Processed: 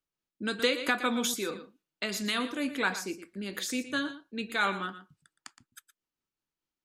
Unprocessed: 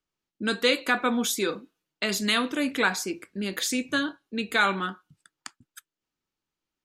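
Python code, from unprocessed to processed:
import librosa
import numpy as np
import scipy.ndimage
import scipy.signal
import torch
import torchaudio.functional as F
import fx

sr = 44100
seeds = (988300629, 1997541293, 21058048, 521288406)

p1 = x * (1.0 - 0.29 / 2.0 + 0.29 / 2.0 * np.cos(2.0 * np.pi * 4.5 * (np.arange(len(x)) / sr)))
p2 = p1 + fx.echo_single(p1, sr, ms=117, db=-13.0, dry=0)
p3 = fx.band_squash(p2, sr, depth_pct=100, at=(0.59, 1.34))
y = p3 * 10.0 ** (-4.5 / 20.0)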